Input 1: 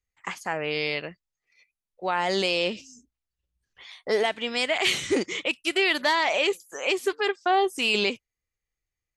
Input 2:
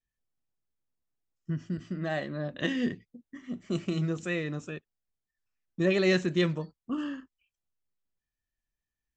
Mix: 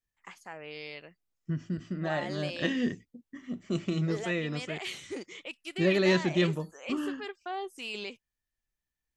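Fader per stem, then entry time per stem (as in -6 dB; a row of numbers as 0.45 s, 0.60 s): -14.5 dB, 0.0 dB; 0.00 s, 0.00 s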